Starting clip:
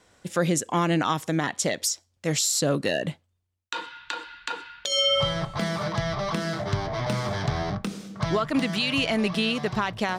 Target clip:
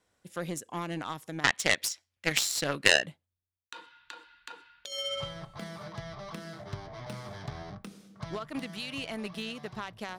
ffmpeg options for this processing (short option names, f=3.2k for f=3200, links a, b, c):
-filter_complex "[0:a]aexciter=amount=1.6:drive=7.1:freq=9.8k,asettb=1/sr,asplit=3[a][b][c];[a]atrim=end=1.444[d];[b]atrim=start=1.44:end=3.06,asetpts=PTS-STARTPTS,afade=t=in:d=0.004:c=qsin,afade=t=out:st=1.616:d=0.004:c=qsin,equalizer=f=2.2k:w=0.69:g=14.5[e];[c]atrim=start=3.056[f];[d][e]acrossfade=d=0.004:c1=hsin:c2=qsin[g];[g][f]acrossfade=d=0.004:c1=qsin:c2=hsin,aeval=exprs='0.631*(cos(1*acos(clip(val(0)/0.631,-1,1)))-cos(1*PI/2))+0.178*(cos(3*acos(clip(val(0)/0.631,-1,1)))-cos(3*PI/2))':c=same,volume=1.5dB"